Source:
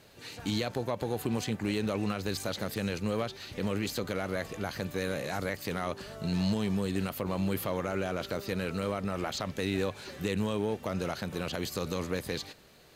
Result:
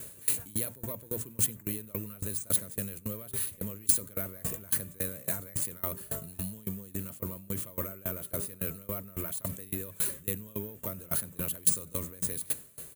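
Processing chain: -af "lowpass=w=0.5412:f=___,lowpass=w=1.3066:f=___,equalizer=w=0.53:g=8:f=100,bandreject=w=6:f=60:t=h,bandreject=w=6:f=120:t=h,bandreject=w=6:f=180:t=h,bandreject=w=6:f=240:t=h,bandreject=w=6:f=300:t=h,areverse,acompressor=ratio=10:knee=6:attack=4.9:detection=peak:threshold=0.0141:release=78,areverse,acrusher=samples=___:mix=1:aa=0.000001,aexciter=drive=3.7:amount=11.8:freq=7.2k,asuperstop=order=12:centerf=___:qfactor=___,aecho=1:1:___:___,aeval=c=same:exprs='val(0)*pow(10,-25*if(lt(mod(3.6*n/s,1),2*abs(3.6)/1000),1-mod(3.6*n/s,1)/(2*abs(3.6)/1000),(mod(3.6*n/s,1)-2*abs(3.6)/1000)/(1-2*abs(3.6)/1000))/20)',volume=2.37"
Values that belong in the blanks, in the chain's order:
9.3k, 9.3k, 3, 790, 4.5, 97, 0.0891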